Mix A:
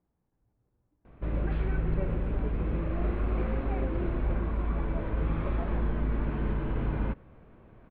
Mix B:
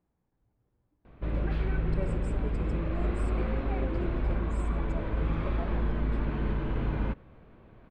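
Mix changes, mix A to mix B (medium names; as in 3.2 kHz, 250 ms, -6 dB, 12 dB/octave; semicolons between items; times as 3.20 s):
speech: remove distance through air 140 m; master: remove boxcar filter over 7 samples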